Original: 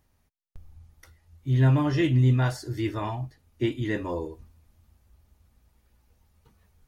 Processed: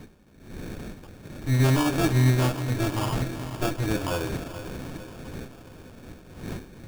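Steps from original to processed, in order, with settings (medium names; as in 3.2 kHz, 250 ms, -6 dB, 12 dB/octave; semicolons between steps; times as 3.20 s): comb filter that takes the minimum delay 9.8 ms; wind noise 280 Hz -44 dBFS; in parallel at -2 dB: compression, threshold -32 dBFS, peak gain reduction 14 dB; on the sum: echo that smears into a reverb 455 ms, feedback 59%, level -11 dB; sample-rate reducer 2 kHz, jitter 0%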